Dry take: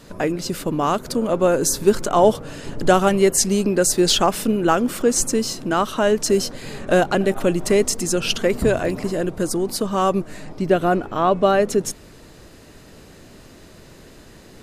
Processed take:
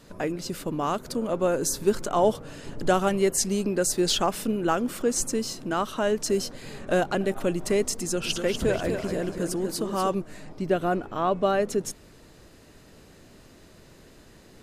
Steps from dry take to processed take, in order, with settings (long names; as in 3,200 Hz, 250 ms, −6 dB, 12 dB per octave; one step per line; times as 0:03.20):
0:07.99–0:10.15: feedback echo with a swinging delay time 244 ms, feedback 42%, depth 86 cents, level −6.5 dB
level −7 dB